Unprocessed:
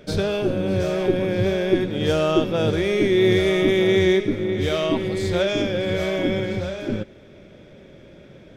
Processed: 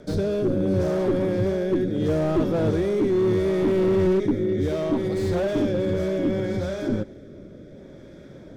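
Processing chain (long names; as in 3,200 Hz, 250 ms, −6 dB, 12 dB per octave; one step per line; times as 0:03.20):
rotating-speaker cabinet horn 0.7 Hz
parametric band 280 Hz +4.5 dB 0.36 octaves
in parallel at +2.5 dB: brickwall limiter −22.5 dBFS, peak gain reduction 16.5 dB
on the sum: parametric band 2,700 Hz −14 dB 0.64 octaves
slew-rate limiting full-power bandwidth 72 Hz
level −3.5 dB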